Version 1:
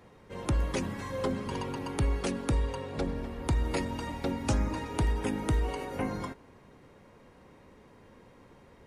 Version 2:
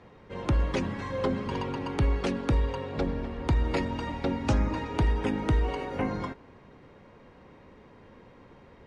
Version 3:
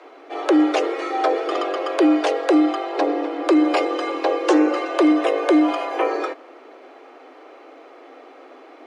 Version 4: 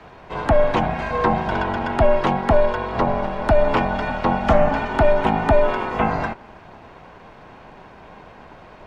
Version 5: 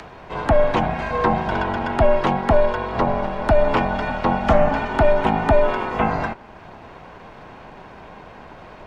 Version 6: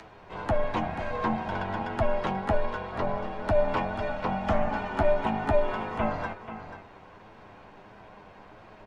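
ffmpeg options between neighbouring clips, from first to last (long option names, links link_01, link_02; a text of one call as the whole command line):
ffmpeg -i in.wav -af "lowpass=4400,volume=3dB" out.wav
ffmpeg -i in.wav -af "afreqshift=250,volume=8.5dB" out.wav
ffmpeg -i in.wav -filter_complex "[0:a]acrossover=split=530|3000[link_01][link_02][link_03];[link_03]acompressor=threshold=-50dB:ratio=4[link_04];[link_01][link_02][link_04]amix=inputs=3:normalize=0,aeval=exprs='val(0)*sin(2*PI*290*n/s)':channel_layout=same,volume=4dB" out.wav
ffmpeg -i in.wav -af "acompressor=mode=upward:threshold=-34dB:ratio=2.5" out.wav
ffmpeg -i in.wav -af "flanger=delay=9:depth=1.5:regen=42:speed=1.5:shape=triangular,aecho=1:1:486:0.299,volume=-5.5dB" out.wav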